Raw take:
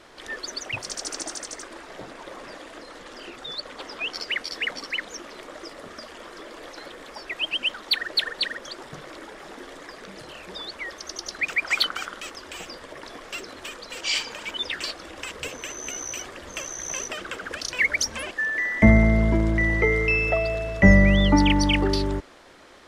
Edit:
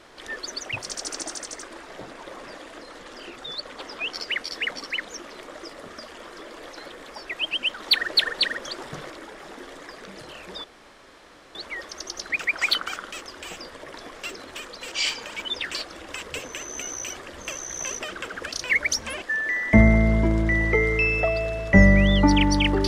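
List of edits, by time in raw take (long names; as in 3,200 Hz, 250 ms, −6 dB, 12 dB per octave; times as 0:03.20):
0:07.80–0:09.10: clip gain +3.5 dB
0:10.64: splice in room tone 0.91 s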